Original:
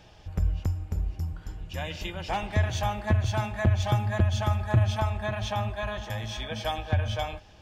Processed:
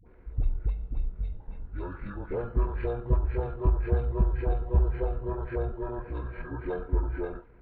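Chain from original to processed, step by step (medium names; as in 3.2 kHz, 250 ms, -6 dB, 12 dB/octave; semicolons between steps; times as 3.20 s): knee-point frequency compression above 1.9 kHz 1.5:1; treble shelf 2.1 kHz -10 dB; phase dispersion highs, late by 58 ms, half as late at 910 Hz; pitch shift -9.5 st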